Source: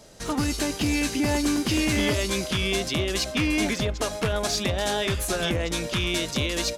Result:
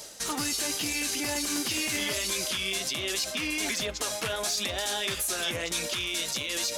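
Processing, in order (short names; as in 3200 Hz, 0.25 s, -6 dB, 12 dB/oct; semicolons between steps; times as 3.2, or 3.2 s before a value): tilt +3 dB/oct; reverse; upward compressor, threshold -27 dBFS; reverse; limiter -18.5 dBFS, peak gain reduction 10.5 dB; flange 0.83 Hz, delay 1.9 ms, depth 7.1 ms, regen -45%; gain +2.5 dB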